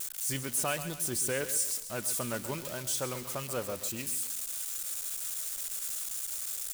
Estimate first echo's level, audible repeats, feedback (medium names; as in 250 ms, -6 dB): -12.0 dB, 3, 41%